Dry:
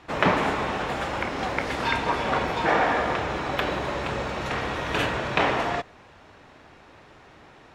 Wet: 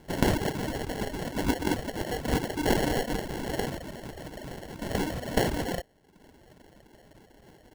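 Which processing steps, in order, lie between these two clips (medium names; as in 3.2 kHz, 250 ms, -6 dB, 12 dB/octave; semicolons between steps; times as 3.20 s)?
ten-band graphic EQ 125 Hz -11 dB, 500 Hz -6 dB, 1 kHz +4 dB; 1.36–2.24 s: reverse; sample-and-hold 36×; reverb removal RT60 0.79 s; 3.76–4.82 s: compression 5:1, threshold -36 dBFS, peak gain reduction 10 dB; trim -1.5 dB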